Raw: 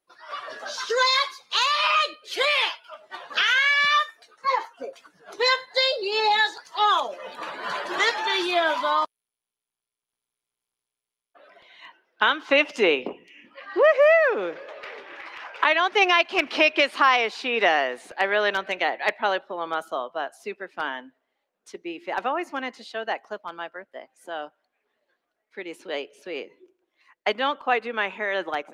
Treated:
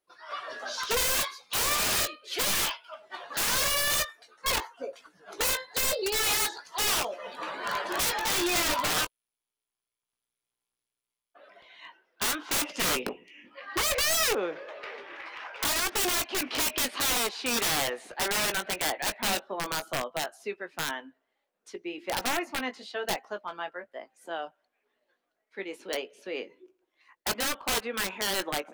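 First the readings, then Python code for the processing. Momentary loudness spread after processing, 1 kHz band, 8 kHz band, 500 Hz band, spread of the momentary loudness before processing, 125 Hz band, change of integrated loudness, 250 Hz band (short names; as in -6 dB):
16 LU, -9.0 dB, +14.0 dB, -9.5 dB, 18 LU, n/a, -5.5 dB, -3.5 dB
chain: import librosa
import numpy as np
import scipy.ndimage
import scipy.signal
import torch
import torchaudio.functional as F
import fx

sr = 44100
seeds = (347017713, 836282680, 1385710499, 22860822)

y = (np.mod(10.0 ** (19.5 / 20.0) * x + 1.0, 2.0) - 1.0) / 10.0 ** (19.5 / 20.0)
y = fx.chorus_voices(y, sr, voices=4, hz=0.16, base_ms=18, depth_ms=2.3, mix_pct=25)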